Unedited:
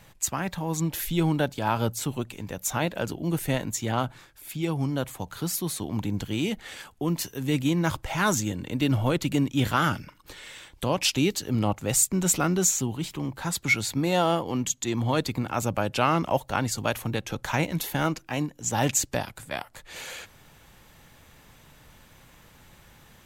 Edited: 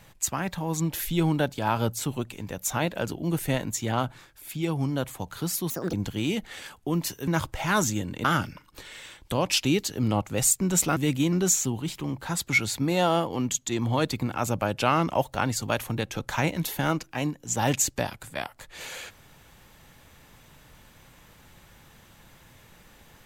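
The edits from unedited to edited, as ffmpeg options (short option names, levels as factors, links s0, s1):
-filter_complex "[0:a]asplit=7[s0][s1][s2][s3][s4][s5][s6];[s0]atrim=end=5.704[s7];[s1]atrim=start=5.7:end=6.08,asetpts=PTS-STARTPTS,asetrate=71442,aresample=44100,atrim=end_sample=10344,asetpts=PTS-STARTPTS[s8];[s2]atrim=start=6.076:end=7.422[s9];[s3]atrim=start=7.778:end=8.752[s10];[s4]atrim=start=9.758:end=12.482[s11];[s5]atrim=start=7.418:end=7.782[s12];[s6]atrim=start=12.478[s13];[s7][s8]acrossfade=d=0.004:c1=hsin:c2=hsin[s14];[s14][s9]acrossfade=d=0.004:c1=hsin:c2=hsin[s15];[s15][s10]acrossfade=d=0.004:c1=hsin:c2=hsin[s16];[s16][s11]acrossfade=d=0.004:c1=hsin:c2=hsin[s17];[s17][s12]acrossfade=d=0.004:c1=hsin:c2=hsin[s18];[s18][s13]acrossfade=d=0.004:c1=hsin:c2=hsin"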